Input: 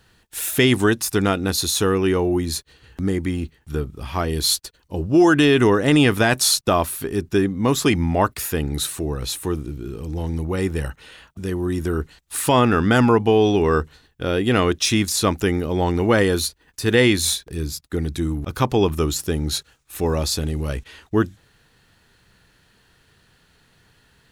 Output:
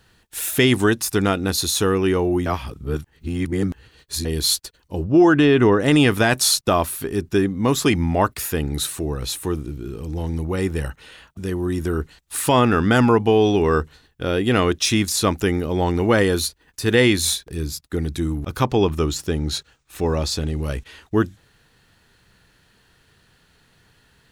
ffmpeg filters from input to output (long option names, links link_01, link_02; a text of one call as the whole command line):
ffmpeg -i in.wav -filter_complex "[0:a]asettb=1/sr,asplit=3[link_01][link_02][link_03];[link_01]atrim=end=5.044[link_04];[link_02]atrim=start=5.04:end=5.8,asetpts=PTS-STARTPTS,afade=type=in:duration=0.004:curve=qsin,afade=type=out:start_time=0.756:duration=0.004:curve=qsin,aemphasis=mode=reproduction:type=75fm[link_05];[link_03]atrim=start=5.796[link_06];[link_04][link_05]acrossfade=duration=0.004:curve1=hsin:curve2=qsin[link_07];[link_07][link_06]acrossfade=duration=0.004:curve1=qsin:curve2=hsin,asettb=1/sr,asplit=3[link_08][link_09][link_10];[link_08]atrim=end=18.644[link_11];[link_09]atrim=start=18.64:end=20.63,asetpts=PTS-STARTPTS,afade=type=in:duration=0.004:curve=qsin,afade=type=out:start_time=1.986:duration=0.004:curve=qsin,equalizer=frequency=12000:width=0.98:gain=-9.5[link_12];[link_10]atrim=start=20.626[link_13];[link_11][link_12]acrossfade=duration=0.004:curve1=hsin:curve2=qsin[link_14];[link_14][link_13]acrossfade=duration=0.004:curve1=qsin:curve2=hsin,asplit=3[link_15][link_16][link_17];[link_15]atrim=end=2.462[link_18];[link_16]atrim=start=2.458:end=4.252,asetpts=PTS-STARTPTS,areverse[link_19];[link_17]atrim=start=4.248[link_20];[link_18][link_19]acrossfade=duration=0.004:curve1=hsin:curve2=hsin[link_21];[link_21][link_20]acrossfade=duration=0.004:curve1=hsin:curve2=hsin" out.wav